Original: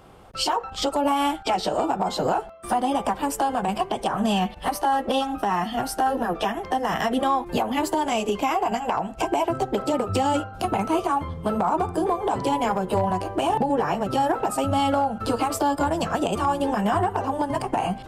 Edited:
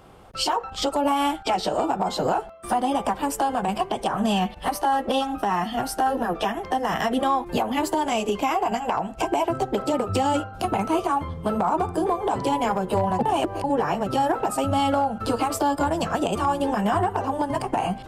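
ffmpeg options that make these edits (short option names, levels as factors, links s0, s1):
-filter_complex "[0:a]asplit=3[s0][s1][s2];[s0]atrim=end=13.192[s3];[s1]atrim=start=13.188:end=13.642,asetpts=PTS-STARTPTS,areverse[s4];[s2]atrim=start=13.638[s5];[s3][s4]acrossfade=d=0.004:c1=hsin:c2=hsin[s6];[s6][s5]acrossfade=d=0.004:c1=hsin:c2=hsin"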